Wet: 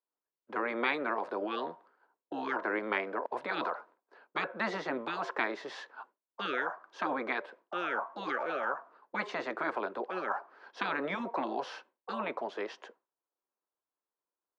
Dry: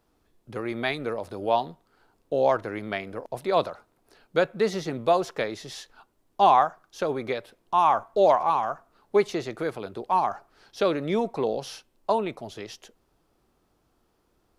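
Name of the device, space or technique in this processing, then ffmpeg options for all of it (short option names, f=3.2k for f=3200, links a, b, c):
television speaker: -filter_complex "[0:a]highpass=f=190:w=0.5412,highpass=f=190:w=1.3066,equalizer=f=540:t=q:w=4:g=4,equalizer=f=1k:t=q:w=4:g=9,equalizer=f=1.6k:t=q:w=4:g=6,equalizer=f=4.6k:t=q:w=4:g=3,lowpass=f=8.2k:w=0.5412,lowpass=f=8.2k:w=1.3066,lowshelf=f=240:g=3.5,agate=range=-33dB:threshold=-49dB:ratio=3:detection=peak,acrossover=split=330 2600:gain=0.141 1 0.112[a][b][c];[a][b][c]amix=inputs=3:normalize=0,afftfilt=real='re*lt(hypot(re,im),0.158)':imag='im*lt(hypot(re,im),0.158)':win_size=1024:overlap=0.75,volume=2.5dB"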